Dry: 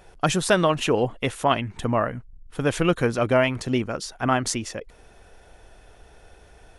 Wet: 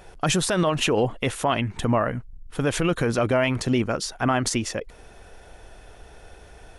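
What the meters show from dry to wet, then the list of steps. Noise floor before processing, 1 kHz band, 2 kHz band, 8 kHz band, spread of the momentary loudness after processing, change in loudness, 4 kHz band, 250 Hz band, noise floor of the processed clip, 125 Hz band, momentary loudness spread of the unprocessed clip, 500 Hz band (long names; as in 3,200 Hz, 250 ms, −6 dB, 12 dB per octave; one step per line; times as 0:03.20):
−52 dBFS, −1.5 dB, −0.5 dB, +2.0 dB, 6 LU, −0.5 dB, +1.5 dB, +1.0 dB, −48 dBFS, +1.5 dB, 10 LU, −1.0 dB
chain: brickwall limiter −16 dBFS, peak gain reduction 11 dB
level +4 dB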